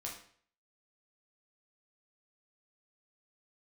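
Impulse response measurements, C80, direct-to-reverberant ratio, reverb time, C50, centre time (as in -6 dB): 10.0 dB, -2.5 dB, 0.55 s, 5.5 dB, 30 ms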